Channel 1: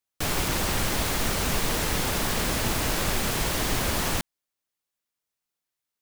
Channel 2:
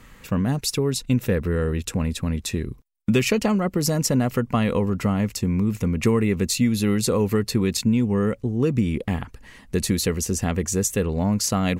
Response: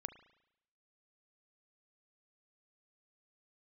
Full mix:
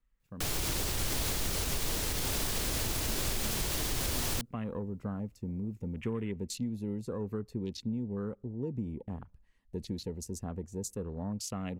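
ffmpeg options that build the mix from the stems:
-filter_complex "[0:a]equalizer=f=200:w=1.5:g=-7.5,adelay=200,volume=0.891[s0];[1:a]afwtdn=0.0282,volume=0.168,afade=t=in:st=4.21:d=0.46:silence=0.421697,asplit=2[s1][s2];[s2]volume=0.133[s3];[2:a]atrim=start_sample=2205[s4];[s3][s4]afir=irnorm=-1:irlink=0[s5];[s0][s1][s5]amix=inputs=3:normalize=0,acrossover=split=430|3000[s6][s7][s8];[s7]acompressor=threshold=0.0112:ratio=6[s9];[s6][s9][s8]amix=inputs=3:normalize=0,alimiter=limit=0.0794:level=0:latency=1:release=95"

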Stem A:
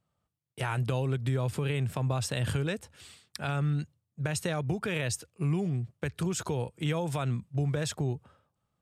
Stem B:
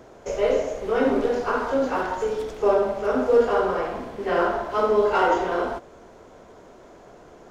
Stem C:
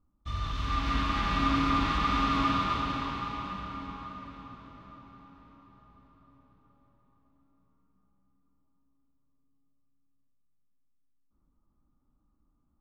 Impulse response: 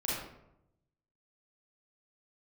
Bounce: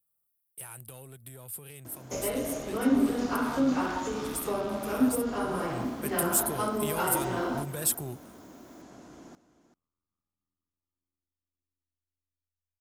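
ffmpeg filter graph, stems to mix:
-filter_complex "[0:a]aexciter=amount=10:drive=8.4:freq=9200,asoftclip=type=tanh:threshold=0.075,volume=0.708,afade=t=in:st=5.5:d=0.32:silence=0.266073[s0];[1:a]acrossover=split=160[s1][s2];[s2]acompressor=threshold=0.0794:ratio=6[s3];[s1][s3]amix=inputs=2:normalize=0,highpass=60,lowshelf=f=350:t=q:w=3:g=6.5,adelay=1850,volume=0.668,asplit=2[s4][s5];[s5]volume=0.178[s6];[2:a]tremolo=f=84:d=0.974,adelay=2150,volume=0.2[s7];[s6]aecho=0:1:389:1[s8];[s0][s4][s7][s8]amix=inputs=4:normalize=0,bass=f=250:g=-5,treble=f=4000:g=8"

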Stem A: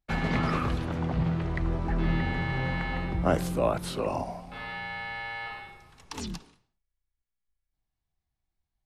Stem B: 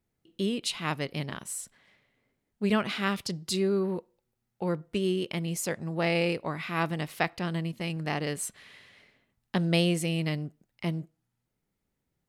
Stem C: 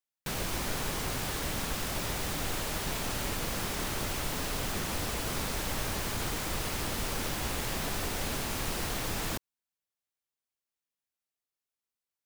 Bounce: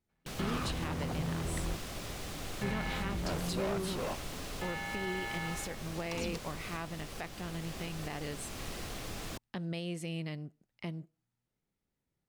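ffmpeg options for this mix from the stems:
-filter_complex "[0:a]asoftclip=type=hard:threshold=0.0299,volume=0.668[s0];[1:a]volume=0.562,asplit=2[s1][s2];[2:a]equalizer=f=1600:w=1.5:g=-3,bandreject=f=910:w=10,volume=0.473[s3];[s2]apad=whole_len=390471[s4];[s0][s4]sidechaingate=range=0.00631:threshold=0.00141:ratio=16:detection=peak[s5];[s1][s3]amix=inputs=2:normalize=0,highshelf=f=11000:g=-9.5,alimiter=level_in=1.58:limit=0.0631:level=0:latency=1:release=355,volume=0.631,volume=1[s6];[s5][s6]amix=inputs=2:normalize=0"

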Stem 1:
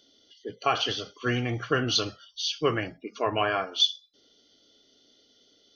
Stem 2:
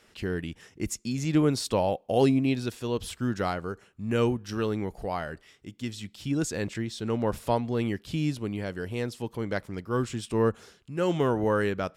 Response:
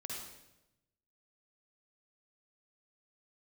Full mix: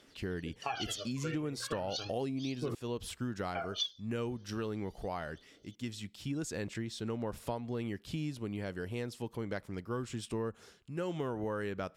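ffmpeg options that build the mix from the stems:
-filter_complex "[0:a]aphaser=in_gain=1:out_gain=1:delay=2.3:decay=0.77:speed=0.36:type=triangular,volume=0.376,asplit=3[s0][s1][s2];[s0]atrim=end=2.75,asetpts=PTS-STARTPTS,afade=t=out:st=2.746:d=0.004:c=hsin[s3];[s1]atrim=start=2.75:end=3.55,asetpts=PTS-STARTPTS,volume=0[s4];[s2]atrim=start=3.55,asetpts=PTS-STARTPTS,afade=t=in:d=0.004:c=hsin[s5];[s3][s4][s5]concat=n=3:v=0:a=1[s6];[1:a]volume=0.596,asplit=2[s7][s8];[s8]apad=whole_len=253684[s9];[s6][s9]sidechaincompress=threshold=0.0224:ratio=8:attack=16:release=109[s10];[s10][s7]amix=inputs=2:normalize=0,acompressor=threshold=0.0224:ratio=6"

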